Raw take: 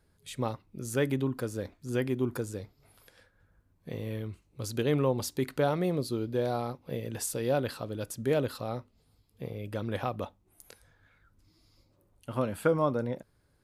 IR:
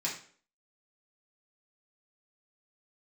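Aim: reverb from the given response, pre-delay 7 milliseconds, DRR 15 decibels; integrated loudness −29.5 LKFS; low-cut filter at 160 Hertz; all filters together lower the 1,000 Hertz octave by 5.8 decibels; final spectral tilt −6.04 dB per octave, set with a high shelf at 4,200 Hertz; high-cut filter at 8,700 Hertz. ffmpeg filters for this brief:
-filter_complex "[0:a]highpass=160,lowpass=8700,equalizer=frequency=1000:width_type=o:gain=-8,highshelf=frequency=4200:gain=-4,asplit=2[link_01][link_02];[1:a]atrim=start_sample=2205,adelay=7[link_03];[link_02][link_03]afir=irnorm=-1:irlink=0,volume=-19.5dB[link_04];[link_01][link_04]amix=inputs=2:normalize=0,volume=5dB"

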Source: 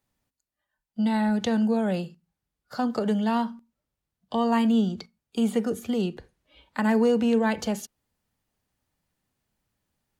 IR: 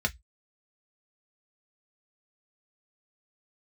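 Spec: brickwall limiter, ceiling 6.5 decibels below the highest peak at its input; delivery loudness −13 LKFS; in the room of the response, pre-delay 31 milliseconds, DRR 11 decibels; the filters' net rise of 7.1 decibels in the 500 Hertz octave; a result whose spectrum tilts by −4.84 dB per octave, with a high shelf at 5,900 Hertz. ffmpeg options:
-filter_complex "[0:a]equalizer=frequency=500:width_type=o:gain=8,highshelf=frequency=5900:gain=-7,alimiter=limit=-13.5dB:level=0:latency=1,asplit=2[link_01][link_02];[1:a]atrim=start_sample=2205,adelay=31[link_03];[link_02][link_03]afir=irnorm=-1:irlink=0,volume=-19dB[link_04];[link_01][link_04]amix=inputs=2:normalize=0,volume=10.5dB"

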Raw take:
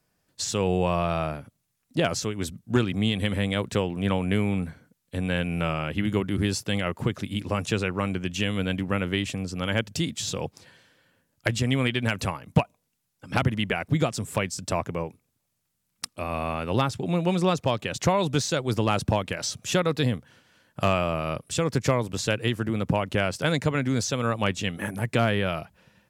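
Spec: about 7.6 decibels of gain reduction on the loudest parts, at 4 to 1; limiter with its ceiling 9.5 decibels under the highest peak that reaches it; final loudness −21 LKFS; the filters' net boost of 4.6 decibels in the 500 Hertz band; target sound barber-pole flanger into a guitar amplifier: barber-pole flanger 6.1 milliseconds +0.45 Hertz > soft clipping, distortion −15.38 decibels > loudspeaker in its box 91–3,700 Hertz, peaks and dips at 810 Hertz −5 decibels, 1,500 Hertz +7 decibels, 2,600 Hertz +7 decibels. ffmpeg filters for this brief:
ffmpeg -i in.wav -filter_complex "[0:a]equalizer=frequency=500:width_type=o:gain=6,acompressor=threshold=-23dB:ratio=4,alimiter=limit=-18.5dB:level=0:latency=1,asplit=2[link_01][link_02];[link_02]adelay=6.1,afreqshift=0.45[link_03];[link_01][link_03]amix=inputs=2:normalize=1,asoftclip=threshold=-26.5dB,highpass=91,equalizer=frequency=810:width_type=q:width=4:gain=-5,equalizer=frequency=1500:width_type=q:width=4:gain=7,equalizer=frequency=2600:width_type=q:width=4:gain=7,lowpass=frequency=3700:width=0.5412,lowpass=frequency=3700:width=1.3066,volume=14.5dB" out.wav

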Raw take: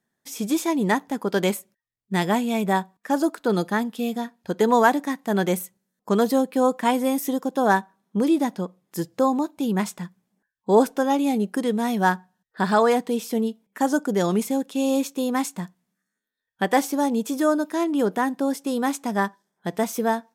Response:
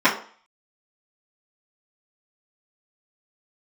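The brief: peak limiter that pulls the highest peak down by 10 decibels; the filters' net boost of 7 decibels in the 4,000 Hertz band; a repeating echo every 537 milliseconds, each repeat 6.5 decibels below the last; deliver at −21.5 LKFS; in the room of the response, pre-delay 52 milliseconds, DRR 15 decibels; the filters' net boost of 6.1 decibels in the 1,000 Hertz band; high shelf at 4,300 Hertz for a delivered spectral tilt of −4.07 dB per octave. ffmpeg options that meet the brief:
-filter_complex "[0:a]equalizer=frequency=1000:width_type=o:gain=7,equalizer=frequency=4000:width_type=o:gain=5,highshelf=frequency=4300:gain=6.5,alimiter=limit=-9.5dB:level=0:latency=1,aecho=1:1:537|1074|1611|2148|2685|3222:0.473|0.222|0.105|0.0491|0.0231|0.0109,asplit=2[link_01][link_02];[1:a]atrim=start_sample=2205,adelay=52[link_03];[link_02][link_03]afir=irnorm=-1:irlink=0,volume=-36.5dB[link_04];[link_01][link_04]amix=inputs=2:normalize=0"

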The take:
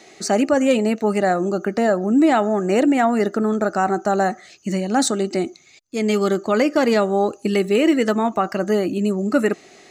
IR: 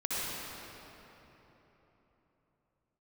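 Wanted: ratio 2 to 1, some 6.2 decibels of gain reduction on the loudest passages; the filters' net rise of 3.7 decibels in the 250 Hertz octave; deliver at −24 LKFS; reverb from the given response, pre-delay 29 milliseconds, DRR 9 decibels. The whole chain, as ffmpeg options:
-filter_complex "[0:a]equalizer=frequency=250:width_type=o:gain=4.5,acompressor=threshold=-20dB:ratio=2,asplit=2[link_01][link_02];[1:a]atrim=start_sample=2205,adelay=29[link_03];[link_02][link_03]afir=irnorm=-1:irlink=0,volume=-16.5dB[link_04];[link_01][link_04]amix=inputs=2:normalize=0,volume=-3dB"

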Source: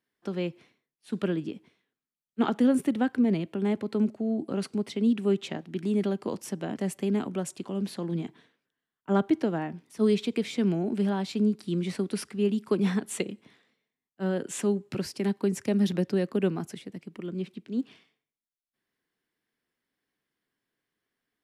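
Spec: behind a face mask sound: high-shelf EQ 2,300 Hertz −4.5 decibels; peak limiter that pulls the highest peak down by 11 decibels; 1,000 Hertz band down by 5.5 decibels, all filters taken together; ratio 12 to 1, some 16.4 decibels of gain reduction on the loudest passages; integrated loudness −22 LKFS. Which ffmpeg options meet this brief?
ffmpeg -i in.wav -af "equalizer=frequency=1000:width_type=o:gain=-7,acompressor=threshold=-36dB:ratio=12,alimiter=level_in=12dB:limit=-24dB:level=0:latency=1,volume=-12dB,highshelf=frequency=2300:gain=-4.5,volume=23.5dB" out.wav

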